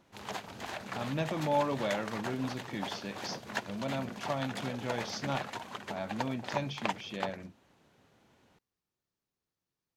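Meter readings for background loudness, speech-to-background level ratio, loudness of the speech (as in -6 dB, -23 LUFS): -40.5 LUFS, 3.5 dB, -37.0 LUFS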